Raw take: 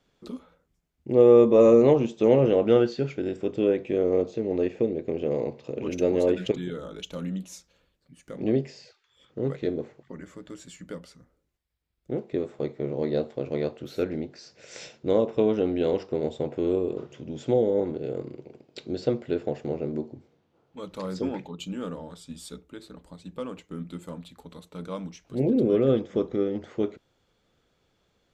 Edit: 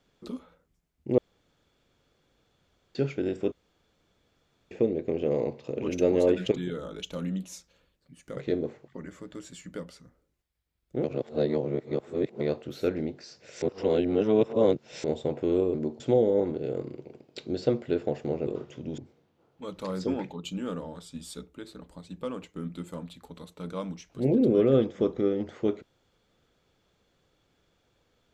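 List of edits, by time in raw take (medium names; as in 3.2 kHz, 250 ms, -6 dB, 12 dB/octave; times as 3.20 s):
1.18–2.95 s: room tone
3.52–4.71 s: room tone
8.37–9.52 s: delete
12.19–13.55 s: reverse
14.77–16.19 s: reverse
16.89–17.40 s: swap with 19.87–20.13 s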